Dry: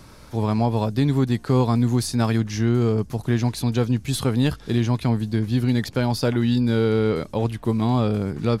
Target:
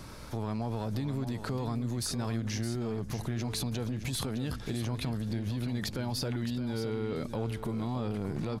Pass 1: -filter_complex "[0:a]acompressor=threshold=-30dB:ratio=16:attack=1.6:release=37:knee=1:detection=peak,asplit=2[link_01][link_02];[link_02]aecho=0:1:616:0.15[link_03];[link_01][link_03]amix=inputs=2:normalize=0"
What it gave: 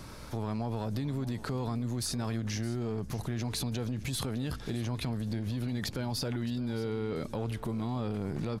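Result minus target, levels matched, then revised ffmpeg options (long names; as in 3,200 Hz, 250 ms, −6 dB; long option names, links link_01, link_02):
echo-to-direct −6.5 dB
-filter_complex "[0:a]acompressor=threshold=-30dB:ratio=16:attack=1.6:release=37:knee=1:detection=peak,asplit=2[link_01][link_02];[link_02]aecho=0:1:616:0.316[link_03];[link_01][link_03]amix=inputs=2:normalize=0"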